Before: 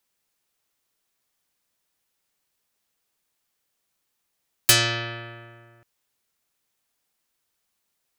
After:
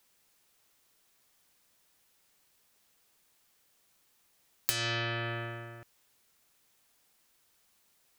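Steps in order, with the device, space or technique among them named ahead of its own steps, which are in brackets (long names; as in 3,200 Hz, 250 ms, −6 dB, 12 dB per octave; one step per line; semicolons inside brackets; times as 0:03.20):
serial compression, leveller first (downward compressor 3 to 1, threshold −22 dBFS, peak gain reduction 8 dB; downward compressor 5 to 1, threshold −37 dBFS, peak gain reduction 17 dB)
level +7 dB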